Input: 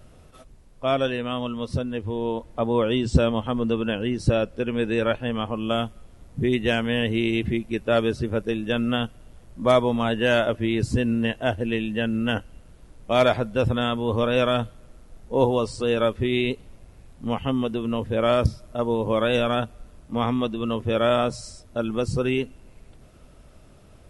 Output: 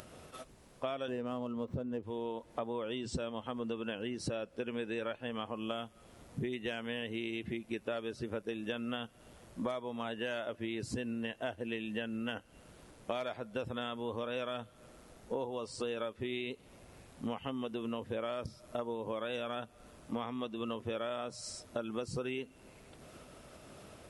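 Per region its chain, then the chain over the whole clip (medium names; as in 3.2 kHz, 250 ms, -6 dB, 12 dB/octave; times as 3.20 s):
1.08–2.03 s: median filter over 9 samples + tilt shelf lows +8.5 dB, about 1.4 kHz
whole clip: upward compressor, threshold -42 dBFS; high-pass 290 Hz 6 dB/octave; compression 16:1, threshold -35 dBFS; trim +1 dB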